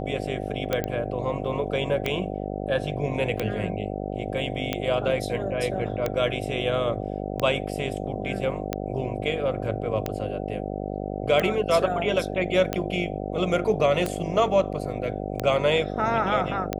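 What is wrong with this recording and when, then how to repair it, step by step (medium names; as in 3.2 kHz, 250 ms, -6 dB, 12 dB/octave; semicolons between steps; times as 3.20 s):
buzz 50 Hz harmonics 15 -31 dBFS
tick 45 rpm -11 dBFS
0.84 s: pop -14 dBFS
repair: de-click; de-hum 50 Hz, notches 15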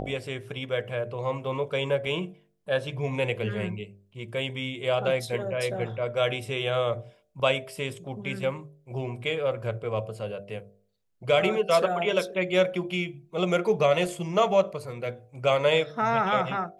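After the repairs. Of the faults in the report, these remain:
nothing left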